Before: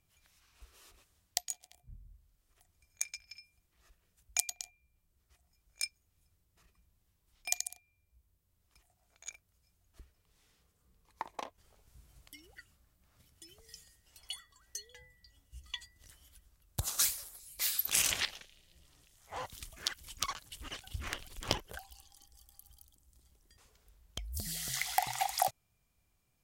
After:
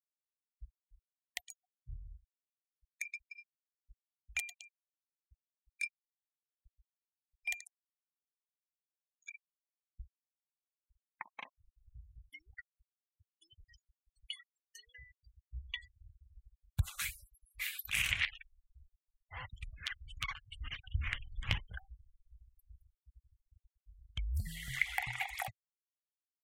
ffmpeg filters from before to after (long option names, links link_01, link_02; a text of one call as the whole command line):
ffmpeg -i in.wav -filter_complex "[0:a]asplit=3[link_01][link_02][link_03];[link_01]atrim=end=7.84,asetpts=PTS-STARTPTS,afade=type=out:start_time=7.48:duration=0.36:silence=0.266073[link_04];[link_02]atrim=start=7.84:end=8.9,asetpts=PTS-STARTPTS,volume=-11.5dB[link_05];[link_03]atrim=start=8.9,asetpts=PTS-STARTPTS,afade=type=in:duration=0.36:silence=0.266073[link_06];[link_04][link_05][link_06]concat=n=3:v=0:a=1,afftfilt=real='re*gte(hypot(re,im),0.00631)':imag='im*gte(hypot(re,im),0.00631)':win_size=1024:overlap=0.75,firequalizer=gain_entry='entry(100,0);entry(340,-25);entry(1100,-12);entry(2200,1);entry(4900,-23);entry(8300,-18)':delay=0.05:min_phase=1,volume=6dB" out.wav